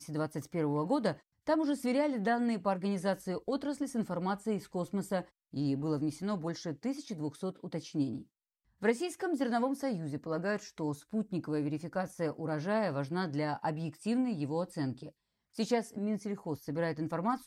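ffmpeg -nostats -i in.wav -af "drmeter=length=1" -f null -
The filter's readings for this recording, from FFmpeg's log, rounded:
Channel 1: DR: 12.2
Overall DR: 12.2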